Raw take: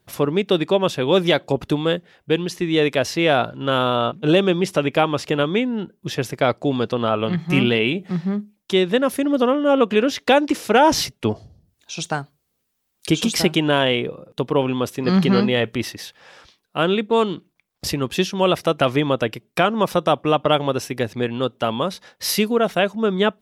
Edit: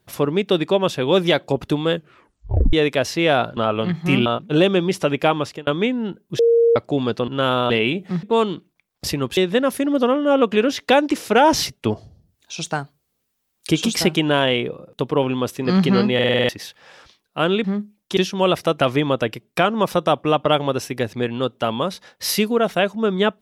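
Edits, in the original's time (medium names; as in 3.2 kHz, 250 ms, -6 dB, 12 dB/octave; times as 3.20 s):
1.93 s: tape stop 0.80 s
3.57–3.99 s: swap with 7.01–7.70 s
5.11–5.40 s: fade out
6.12–6.49 s: bleep 465 Hz -11 dBFS
8.23–8.76 s: swap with 17.03–18.17 s
15.53 s: stutter in place 0.05 s, 7 plays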